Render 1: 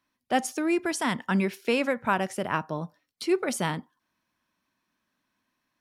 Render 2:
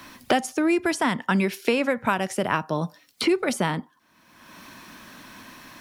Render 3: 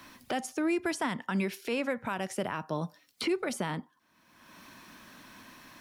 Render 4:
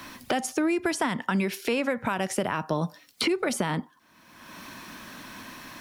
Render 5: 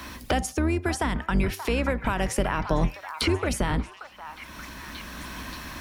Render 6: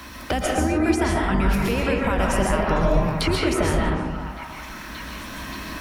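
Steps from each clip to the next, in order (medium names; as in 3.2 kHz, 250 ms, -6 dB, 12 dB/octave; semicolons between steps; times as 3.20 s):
three bands compressed up and down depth 100%; trim +3 dB
peak limiter -14 dBFS, peak gain reduction 7.5 dB; trim -7 dB
compression, threshold -31 dBFS, peak gain reduction 6 dB; trim +9 dB
octave divider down 2 oct, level +3 dB; gain riding within 4 dB 0.5 s; repeats whose band climbs or falls 580 ms, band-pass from 1.1 kHz, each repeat 0.7 oct, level -7 dB
algorithmic reverb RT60 1.4 s, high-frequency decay 0.35×, pre-delay 95 ms, DRR -3 dB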